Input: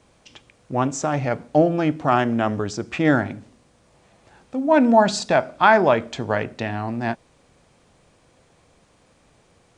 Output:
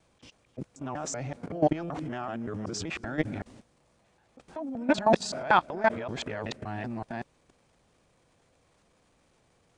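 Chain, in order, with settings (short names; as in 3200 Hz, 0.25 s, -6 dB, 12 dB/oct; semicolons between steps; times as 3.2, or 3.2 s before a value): local time reversal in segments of 0.19 s; transient shaper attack -7 dB, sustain +8 dB; level quantiser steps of 16 dB; gain -3 dB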